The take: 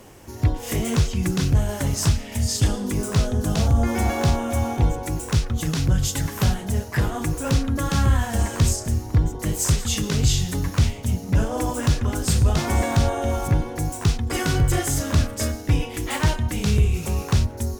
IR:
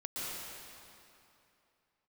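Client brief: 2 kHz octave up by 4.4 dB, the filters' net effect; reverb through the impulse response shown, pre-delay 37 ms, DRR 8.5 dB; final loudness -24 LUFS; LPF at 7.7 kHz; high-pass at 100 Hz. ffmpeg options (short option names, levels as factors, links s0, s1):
-filter_complex "[0:a]highpass=100,lowpass=7700,equalizer=f=2000:t=o:g=5.5,asplit=2[s0][s1];[1:a]atrim=start_sample=2205,adelay=37[s2];[s1][s2]afir=irnorm=-1:irlink=0,volume=0.266[s3];[s0][s3]amix=inputs=2:normalize=0"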